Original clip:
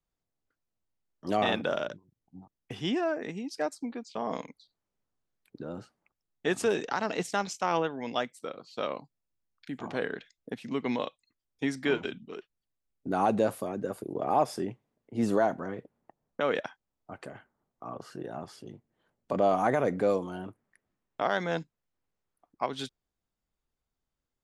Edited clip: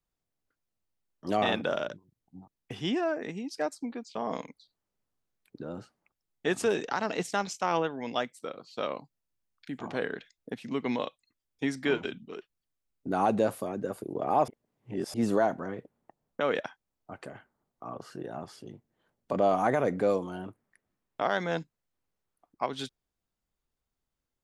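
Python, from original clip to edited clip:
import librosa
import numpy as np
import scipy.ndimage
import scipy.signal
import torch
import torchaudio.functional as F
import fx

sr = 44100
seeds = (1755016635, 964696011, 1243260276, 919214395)

y = fx.edit(x, sr, fx.reverse_span(start_s=14.48, length_s=0.66), tone=tone)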